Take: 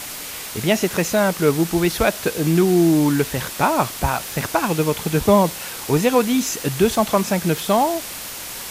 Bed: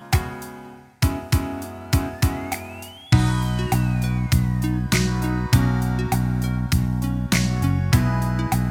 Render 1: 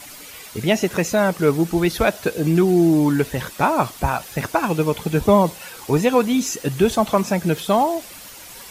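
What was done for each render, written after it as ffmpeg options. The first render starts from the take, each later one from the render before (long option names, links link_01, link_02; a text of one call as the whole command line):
ffmpeg -i in.wav -af "afftdn=noise_reduction=10:noise_floor=-32" out.wav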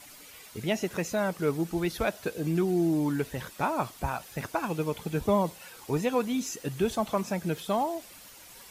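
ffmpeg -i in.wav -af "volume=-10.5dB" out.wav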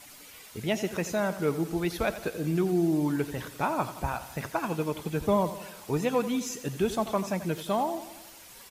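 ffmpeg -i in.wav -af "aecho=1:1:87|174|261|348|435|522:0.211|0.123|0.0711|0.0412|0.0239|0.0139" out.wav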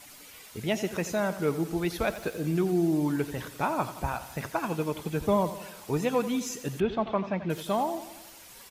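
ffmpeg -i in.wav -filter_complex "[0:a]asettb=1/sr,asplit=3[link_01][link_02][link_03];[link_01]atrim=end=2.044[link_04];[link_02]atrim=start=2.04:end=2.53,asetpts=PTS-STARTPTS,afade=type=in:duration=0.004:curve=qsin,afade=type=out:start_time=0.486:duration=0.004:curve=qsin,aeval=exprs='val(0)*gte(abs(val(0)),0.00237)':channel_layout=same[link_05];[link_03]atrim=start=2.526[link_06];[link_04][link_05]acrossfade=duration=0.004:curve1=hsin:curve2=qsin[link_07];[link_07][link_06]acrossfade=duration=0.004:curve1=qsin:curve2=hsin,asettb=1/sr,asplit=3[link_08][link_09][link_10];[link_08]atrim=end=6.804[link_11];[link_09]atrim=start=6.8:end=7.5,asetpts=PTS-STARTPTS,afade=type=in:duration=0.004:curve=qsin,afade=type=out:start_time=0.696:duration=0.004:curve=qsin,lowpass=frequency=3400:width=0.5412,lowpass=frequency=3400:width=1.3066[link_12];[link_10]atrim=start=7.496[link_13];[link_11][link_12]acrossfade=duration=0.004:curve1=hsin:curve2=qsin[link_14];[link_14][link_13]acrossfade=duration=0.004:curve1=qsin:curve2=hsin" out.wav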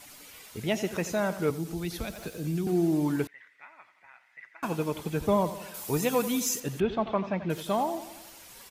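ffmpeg -i in.wav -filter_complex "[0:a]asettb=1/sr,asplit=3[link_01][link_02][link_03];[link_01]atrim=end=1.504[link_04];[link_02]atrim=start=1.5:end=2.67,asetpts=PTS-STARTPTS,afade=type=in:duration=0.004:curve=qsin,afade=type=out:start_time=1.166:duration=0.004:curve=qsin,acrossover=split=250|3000[link_05][link_06][link_07];[link_06]acompressor=threshold=-41dB:ratio=3:attack=3.2:release=140:knee=2.83:detection=peak[link_08];[link_05][link_08][link_07]amix=inputs=3:normalize=0[link_09];[link_03]atrim=start=2.666[link_10];[link_04][link_09]acrossfade=duration=0.004:curve1=hsin:curve2=qsin[link_11];[link_11][link_10]acrossfade=duration=0.004:curve1=qsin:curve2=hsin,asettb=1/sr,asplit=3[link_12][link_13][link_14];[link_12]atrim=end=3.274[link_15];[link_13]atrim=start=3.27:end=4.63,asetpts=PTS-STARTPTS,afade=type=in:duration=0.004:curve=qsin,afade=type=out:start_time=1.356:duration=0.004:curve=qsin,bandpass=frequency=2000:width_type=q:width=11[link_16];[link_14]atrim=start=4.626[link_17];[link_15][link_16]acrossfade=duration=0.004:curve1=hsin:curve2=qsin[link_18];[link_18][link_17]acrossfade=duration=0.004:curve1=qsin:curve2=hsin,asettb=1/sr,asplit=3[link_19][link_20][link_21];[link_19]atrim=end=5.744[link_22];[link_20]atrim=start=5.74:end=6.6,asetpts=PTS-STARTPTS,afade=type=in:duration=0.004:curve=qsin,afade=type=out:start_time=0.856:duration=0.004:curve=qsin,aemphasis=mode=production:type=50kf[link_23];[link_21]atrim=start=6.596[link_24];[link_22][link_23]acrossfade=duration=0.004:curve1=hsin:curve2=qsin[link_25];[link_25][link_24]acrossfade=duration=0.004:curve1=qsin:curve2=hsin" out.wav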